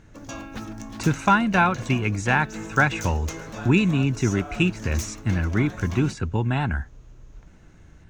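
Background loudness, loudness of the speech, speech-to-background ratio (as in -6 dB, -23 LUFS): -36.5 LUFS, -23.5 LUFS, 13.0 dB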